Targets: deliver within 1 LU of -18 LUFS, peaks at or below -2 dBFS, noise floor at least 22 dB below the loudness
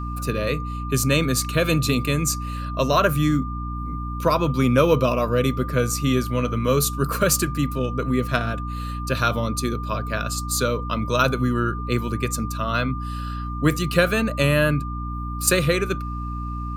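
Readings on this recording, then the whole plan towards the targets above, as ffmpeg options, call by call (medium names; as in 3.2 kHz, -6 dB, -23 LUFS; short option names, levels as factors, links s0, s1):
hum 60 Hz; highest harmonic 300 Hz; hum level -27 dBFS; steady tone 1.2 kHz; tone level -33 dBFS; loudness -22.5 LUFS; peak level -3.0 dBFS; loudness target -18.0 LUFS
-> -af "bandreject=f=60:t=h:w=6,bandreject=f=120:t=h:w=6,bandreject=f=180:t=h:w=6,bandreject=f=240:t=h:w=6,bandreject=f=300:t=h:w=6"
-af "bandreject=f=1200:w=30"
-af "volume=1.68,alimiter=limit=0.794:level=0:latency=1"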